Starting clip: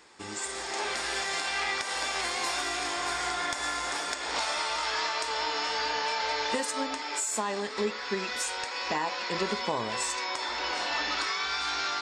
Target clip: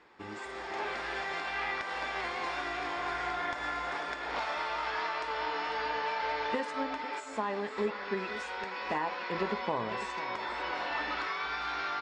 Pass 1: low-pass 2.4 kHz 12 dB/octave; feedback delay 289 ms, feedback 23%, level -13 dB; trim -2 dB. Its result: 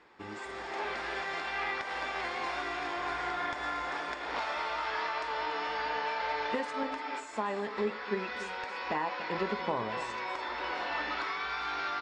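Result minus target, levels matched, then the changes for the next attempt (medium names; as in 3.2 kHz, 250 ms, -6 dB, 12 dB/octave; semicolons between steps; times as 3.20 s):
echo 208 ms early
change: feedback delay 497 ms, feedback 23%, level -13 dB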